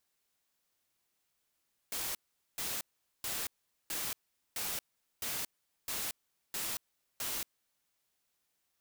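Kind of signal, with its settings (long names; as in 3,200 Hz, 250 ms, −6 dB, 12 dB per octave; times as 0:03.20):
noise bursts white, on 0.23 s, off 0.43 s, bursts 9, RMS −37 dBFS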